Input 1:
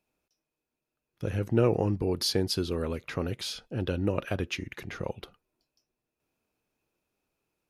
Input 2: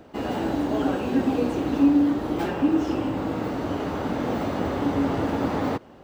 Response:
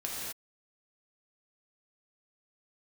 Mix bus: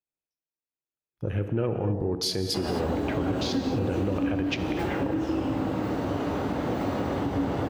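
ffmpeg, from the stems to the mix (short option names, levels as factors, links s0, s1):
-filter_complex "[0:a]afwtdn=0.00794,dynaudnorm=f=660:g=3:m=2.24,volume=0.501,asplit=2[s0][s1];[s1]volume=0.376[s2];[1:a]acrossover=split=170[s3][s4];[s4]acompressor=threshold=0.0501:ratio=6[s5];[s3][s5]amix=inputs=2:normalize=0,adelay=2400,volume=0.631,asplit=2[s6][s7];[s7]volume=0.596[s8];[2:a]atrim=start_sample=2205[s9];[s2][s8]amix=inputs=2:normalize=0[s10];[s10][s9]afir=irnorm=-1:irlink=0[s11];[s0][s6][s11]amix=inputs=3:normalize=0,alimiter=limit=0.126:level=0:latency=1:release=69"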